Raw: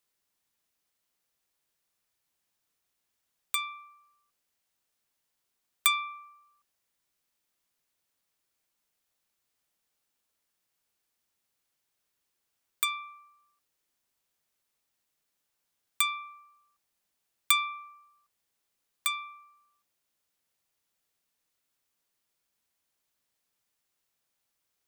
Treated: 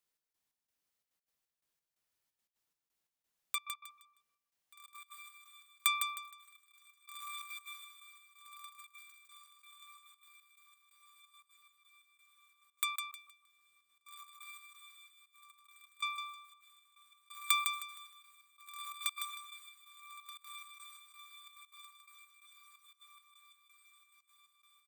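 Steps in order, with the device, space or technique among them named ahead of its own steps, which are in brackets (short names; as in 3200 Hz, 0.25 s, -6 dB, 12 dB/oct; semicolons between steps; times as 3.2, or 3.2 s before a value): diffused feedback echo 1.602 s, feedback 49%, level -9 dB; trance gate with a delay (step gate "xx..xx..xxxx.x." 176 bpm -24 dB; feedback echo 0.156 s, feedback 29%, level -6 dB); gain -6 dB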